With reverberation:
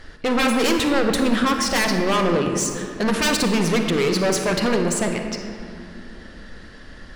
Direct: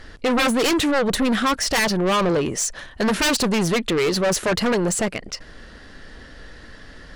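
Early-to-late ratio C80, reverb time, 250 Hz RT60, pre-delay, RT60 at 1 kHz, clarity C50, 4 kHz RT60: 6.0 dB, 2.6 s, 4.1 s, 34 ms, 2.5 s, 4.5 dB, 1.4 s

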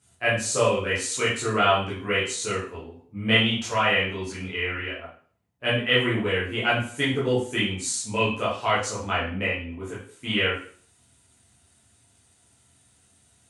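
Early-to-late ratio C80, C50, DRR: 9.0 dB, 4.0 dB, -9.5 dB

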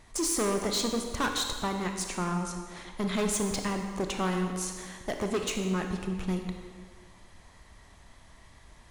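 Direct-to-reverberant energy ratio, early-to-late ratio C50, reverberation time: 4.0 dB, 5.0 dB, 1.7 s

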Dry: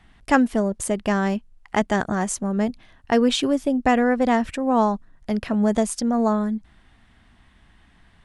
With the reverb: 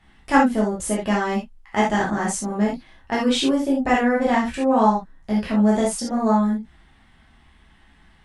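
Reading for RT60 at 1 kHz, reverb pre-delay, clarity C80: no reading, 4 ms, 12.5 dB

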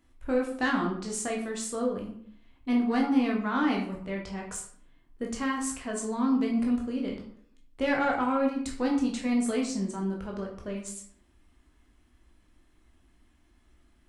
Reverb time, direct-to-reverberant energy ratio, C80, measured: 0.60 s, -1.0 dB, 9.5 dB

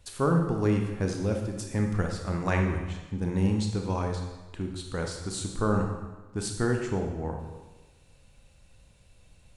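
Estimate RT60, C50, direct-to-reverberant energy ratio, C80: 1.2 s, 4.5 dB, 2.5 dB, 6.5 dB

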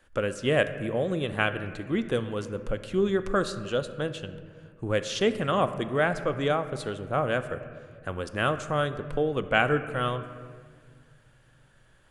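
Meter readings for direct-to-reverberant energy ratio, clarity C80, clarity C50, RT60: 10.0 dB, 13.0 dB, 11.5 dB, 1.8 s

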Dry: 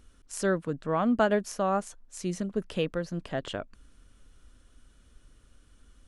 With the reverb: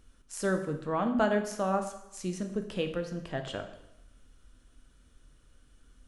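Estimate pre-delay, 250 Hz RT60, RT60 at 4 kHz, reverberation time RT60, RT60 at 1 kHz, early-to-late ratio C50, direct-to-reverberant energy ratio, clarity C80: 4 ms, 0.85 s, 0.80 s, 0.85 s, 0.85 s, 9.5 dB, 5.5 dB, 12.0 dB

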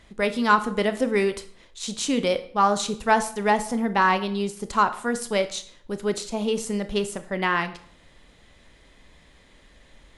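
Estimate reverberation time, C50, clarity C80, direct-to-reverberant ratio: 0.55 s, 14.0 dB, 17.5 dB, 10.0 dB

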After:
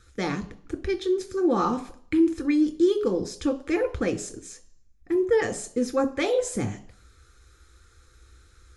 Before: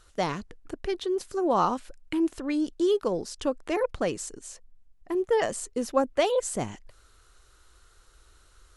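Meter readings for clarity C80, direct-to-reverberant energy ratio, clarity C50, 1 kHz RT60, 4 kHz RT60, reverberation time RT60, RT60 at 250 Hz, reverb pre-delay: 19.5 dB, 7.5 dB, 16.0 dB, 0.55 s, 0.65 s, 0.55 s, 0.55 s, 6 ms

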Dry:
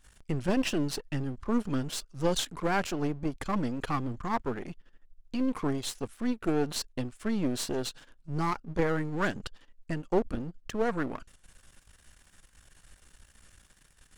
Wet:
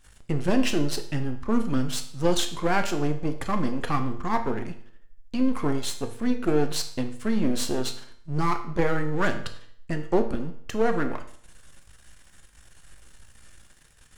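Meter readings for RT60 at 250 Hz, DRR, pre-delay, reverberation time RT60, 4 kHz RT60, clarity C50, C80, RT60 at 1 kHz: 0.60 s, 6.0 dB, 9 ms, 0.60 s, 0.55 s, 11.0 dB, 13.5 dB, 0.60 s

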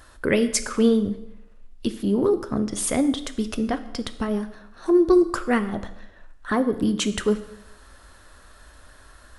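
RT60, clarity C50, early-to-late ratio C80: 0.80 s, 13.5 dB, 15.5 dB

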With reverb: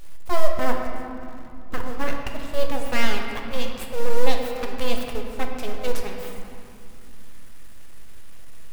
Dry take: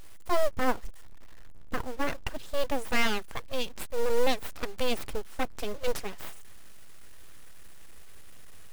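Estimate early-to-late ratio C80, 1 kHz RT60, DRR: 4.5 dB, 2.5 s, 2.0 dB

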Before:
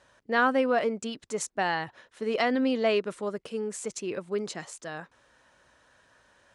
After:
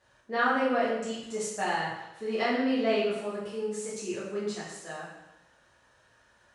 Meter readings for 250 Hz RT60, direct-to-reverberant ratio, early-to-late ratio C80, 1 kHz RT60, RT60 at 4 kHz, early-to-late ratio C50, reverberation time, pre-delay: 0.90 s, -8.5 dB, 4.0 dB, 0.95 s, 0.85 s, 1.5 dB, 0.95 s, 4 ms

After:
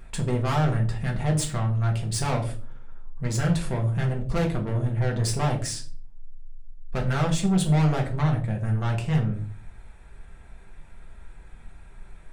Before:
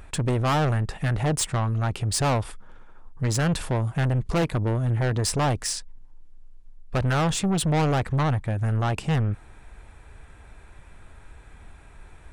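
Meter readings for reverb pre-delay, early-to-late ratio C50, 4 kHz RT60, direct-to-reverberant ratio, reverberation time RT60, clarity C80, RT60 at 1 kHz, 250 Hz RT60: 4 ms, 10.5 dB, 0.30 s, -0.5 dB, 0.45 s, 16.0 dB, 0.35 s, 0.65 s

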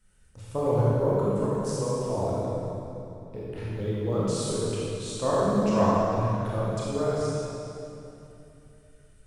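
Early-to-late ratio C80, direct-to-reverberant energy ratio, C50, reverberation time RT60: -3.0 dB, -8.0 dB, -5.0 dB, 2.9 s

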